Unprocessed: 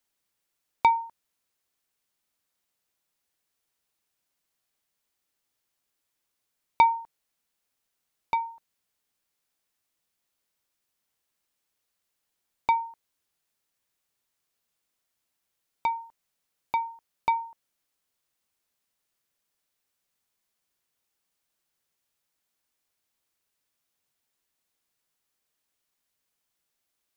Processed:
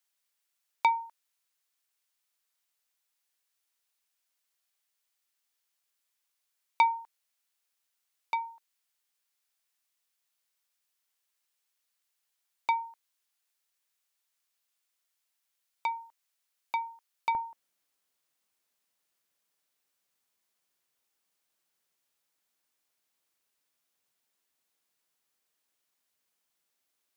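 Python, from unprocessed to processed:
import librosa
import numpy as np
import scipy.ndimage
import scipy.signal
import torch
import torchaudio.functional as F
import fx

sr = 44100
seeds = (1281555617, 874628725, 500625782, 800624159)

y = fx.highpass(x, sr, hz=fx.steps((0.0, 1300.0), (17.35, 200.0)), slope=6)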